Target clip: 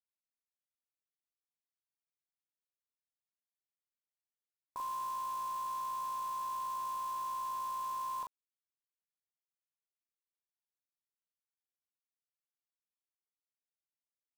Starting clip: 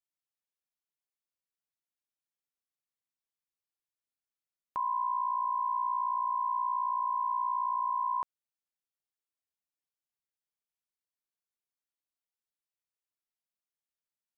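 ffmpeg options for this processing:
ffmpeg -i in.wav -filter_complex "[0:a]lowpass=1100,acrusher=bits=8:dc=4:mix=0:aa=0.000001,asplit=2[link_01][link_02];[link_02]aecho=0:1:19|40:0.178|0.708[link_03];[link_01][link_03]amix=inputs=2:normalize=0,volume=-6.5dB" out.wav

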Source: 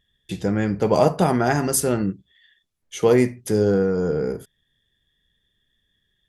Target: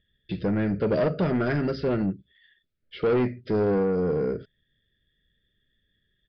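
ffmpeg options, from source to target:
ffmpeg -i in.wav -af "asuperstop=centerf=900:order=12:qfactor=1.5,aresample=11025,asoftclip=type=tanh:threshold=-18.5dB,aresample=44100,lowpass=frequency=2300:poles=1" out.wav

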